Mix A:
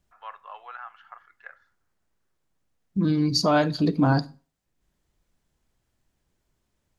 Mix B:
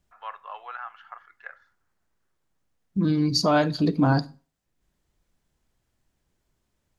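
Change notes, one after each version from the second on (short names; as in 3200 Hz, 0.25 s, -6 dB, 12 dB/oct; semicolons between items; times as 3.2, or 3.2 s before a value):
first voice +3.0 dB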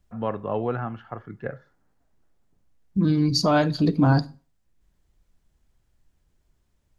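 first voice: remove HPF 1000 Hz 24 dB/oct; master: add low shelf 97 Hz +10.5 dB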